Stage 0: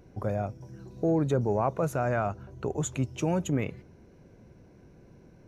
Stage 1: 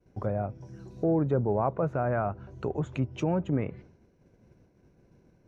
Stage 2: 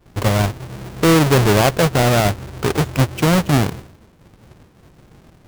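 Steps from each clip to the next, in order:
low-pass that closes with the level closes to 1.6 kHz, closed at -25.5 dBFS; expander -47 dBFS
square wave that keeps the level; trim +9 dB

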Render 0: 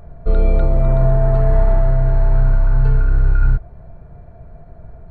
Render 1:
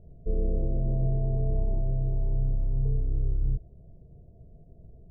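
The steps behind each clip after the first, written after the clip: inverse Chebyshev low-pass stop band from 2.1 kHz, stop band 70 dB; tilt EQ +1.5 dB/octave; trim -6 dB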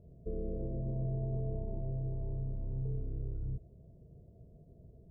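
peak limiter -22.5 dBFS, peak gain reduction 5.5 dB; comb of notches 770 Hz; trim -2 dB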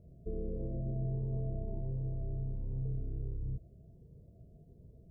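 Shepard-style phaser rising 1.4 Hz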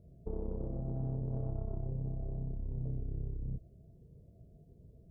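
valve stage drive 32 dB, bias 0.75; trim +3.5 dB

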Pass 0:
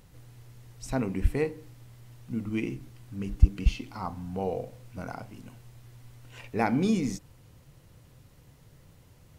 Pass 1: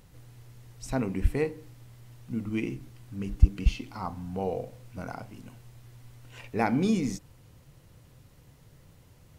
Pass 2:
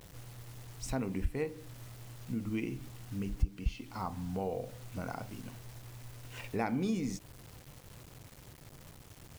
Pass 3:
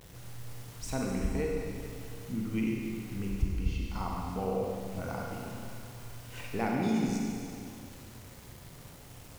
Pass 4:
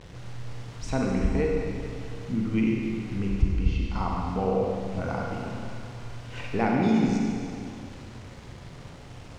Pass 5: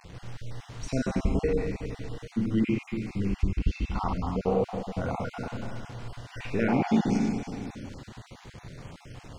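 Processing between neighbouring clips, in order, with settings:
no audible change
bit crusher 9-bit; compression 2:1, threshold -37 dBFS, peak gain reduction 15 dB; trim +1 dB
Schroeder reverb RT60 2.5 s, combs from 32 ms, DRR -1.5 dB
distance through air 110 m; trim +7 dB
random holes in the spectrogram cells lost 23%

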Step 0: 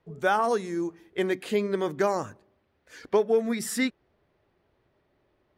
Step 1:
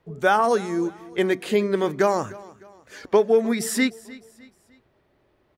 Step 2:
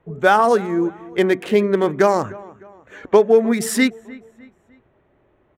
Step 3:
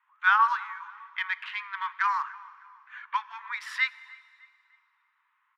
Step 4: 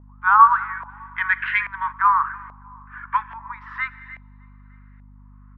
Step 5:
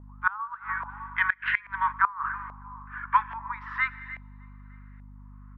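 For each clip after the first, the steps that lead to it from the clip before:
feedback delay 304 ms, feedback 41%, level -20.5 dB; trim +5 dB
local Wiener filter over 9 samples; trim +5 dB
steep high-pass 950 Hz 96 dB/octave; distance through air 320 m; reverberation RT60 2.4 s, pre-delay 3 ms, DRR 17 dB
hum 50 Hz, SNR 19 dB; time-frequency box 0.89–1.92 s, 1.4–7.6 kHz +9 dB; LFO low-pass saw up 1.2 Hz 730–1900 Hz; trim +3.5 dB
inverted gate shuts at -9 dBFS, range -24 dB

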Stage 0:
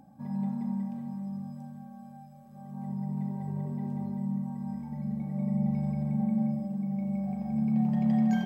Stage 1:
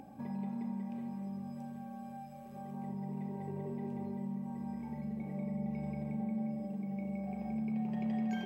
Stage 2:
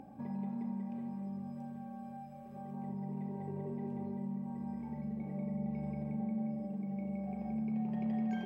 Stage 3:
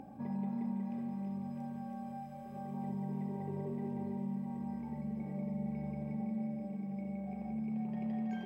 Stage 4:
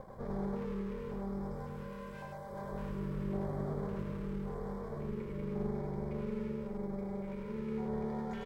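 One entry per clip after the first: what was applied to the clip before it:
fifteen-band graphic EQ 160 Hz -8 dB, 400 Hz +10 dB, 2.5 kHz +10 dB; compression 2:1, threshold -47 dBFS, peak gain reduction 12.5 dB; trim +4 dB
treble shelf 2.4 kHz -9 dB
gain riding within 3 dB 2 s; feedback echo behind a high-pass 327 ms, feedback 80%, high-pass 2.1 kHz, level -4 dB; attacks held to a fixed rise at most 330 dB/s
comb filter that takes the minimum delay 1.7 ms; LFO notch square 0.9 Hz 740–2700 Hz; delay 101 ms -3.5 dB; trim +2.5 dB

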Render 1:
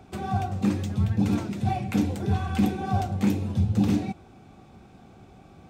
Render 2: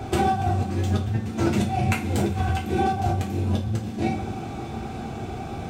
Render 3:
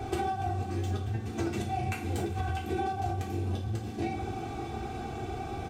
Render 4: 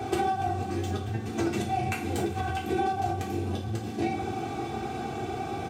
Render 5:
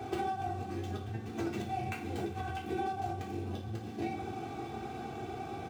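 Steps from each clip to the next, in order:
compressor with a negative ratio -35 dBFS, ratio -1; two-slope reverb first 0.28 s, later 4.7 s, from -21 dB, DRR -2.5 dB; trim +5 dB
comb 2.6 ms, depth 46%; compression, threshold -23 dBFS, peak gain reduction 8 dB; trim -5 dB
high-pass 120 Hz 12 dB/octave; trim +4.5 dB
median filter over 5 samples; trim -7.5 dB

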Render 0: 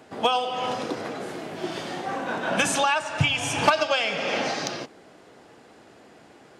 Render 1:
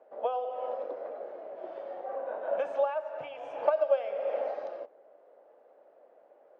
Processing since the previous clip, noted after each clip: ladder band-pass 600 Hz, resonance 75%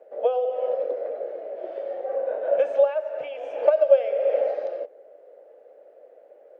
graphic EQ 125/250/500/1000/2000 Hz -9/-4/+10/-11/+3 dB; trim +4.5 dB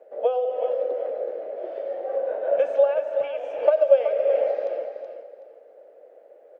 feedback delay 375 ms, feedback 24%, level -8 dB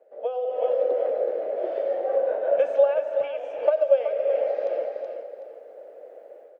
level rider gain up to 13 dB; trim -7.5 dB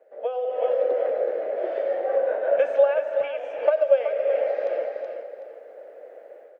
peaking EQ 1.8 kHz +7.5 dB 1.1 oct

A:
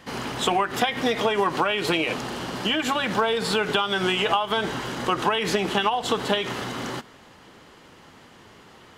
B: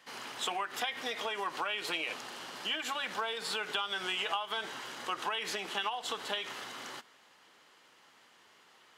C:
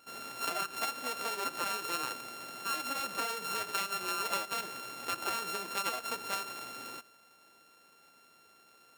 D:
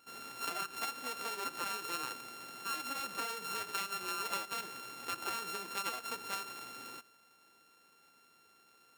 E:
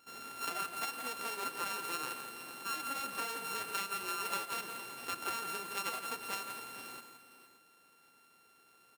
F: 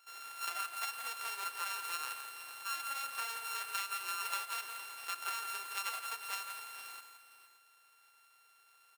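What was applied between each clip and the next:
high-pass 1.2 kHz 6 dB/octave; trim -8 dB
sorted samples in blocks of 32 samples
peaking EQ 620 Hz -5.5 dB 0.37 oct; trim -3.5 dB
multi-tap echo 169/459/573 ms -8.5/-13/-17 dB
high-pass 950 Hz 12 dB/octave

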